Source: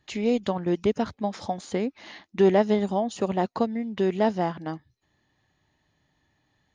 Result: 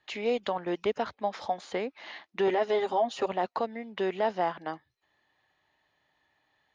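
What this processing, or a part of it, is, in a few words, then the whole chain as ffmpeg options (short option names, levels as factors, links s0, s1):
DJ mixer with the lows and highs turned down: -filter_complex "[0:a]asettb=1/sr,asplit=3[s0][s1][s2];[s0]atrim=end=2.474[s3];[s1]atrim=start=2.47:end=3.26,asetpts=PTS-STARTPTS,afade=t=in:d=0.004:c=qsin,afade=t=out:st=0.786:d=0.004:c=qsin,aecho=1:1:7.5:0.92,atrim=end_sample=34839[s4];[s2]atrim=start=3.256[s5];[s3][s4]acrossfade=d=0.004:c1=hsin:c2=qsin[s6];[s6][s5]acrossfade=d=0.004:c1=qsin:c2=hsin,acrossover=split=440 4400:gain=0.158 1 0.2[s7][s8][s9];[s7][s8][s9]amix=inputs=3:normalize=0,alimiter=limit=0.106:level=0:latency=1:release=24,volume=1.19"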